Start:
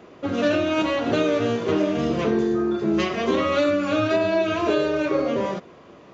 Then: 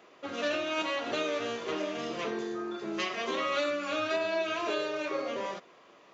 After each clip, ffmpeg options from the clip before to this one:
-af "highpass=f=1.1k:p=1,bandreject=f=1.5k:w=22,volume=-3.5dB"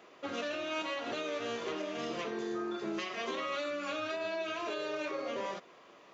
-af "alimiter=level_in=3.5dB:limit=-24dB:level=0:latency=1:release=279,volume=-3.5dB"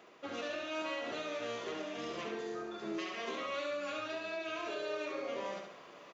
-af "areverse,acompressor=mode=upward:threshold=-43dB:ratio=2.5,areverse,aecho=1:1:70|140|210|280|350|420:0.562|0.264|0.124|0.0584|0.0274|0.0129,volume=-4dB"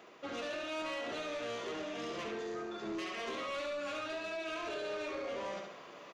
-af "asoftclip=type=tanh:threshold=-36.5dB,volume=2.5dB"

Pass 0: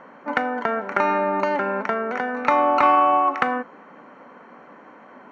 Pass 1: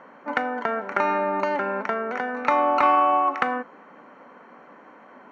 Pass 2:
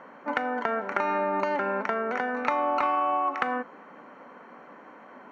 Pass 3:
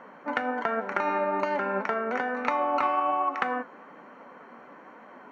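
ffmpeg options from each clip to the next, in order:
-af "lowshelf=f=140:g=-5.5,volume=-2dB"
-af "acompressor=threshold=-23dB:ratio=4"
-af "flanger=delay=3.9:depth=4.9:regen=70:speed=1.2:shape=triangular,volume=4dB"

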